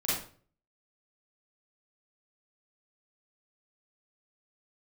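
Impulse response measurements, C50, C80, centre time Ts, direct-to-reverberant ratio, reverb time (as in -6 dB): -1.0 dB, 6.0 dB, 58 ms, -9.5 dB, 0.45 s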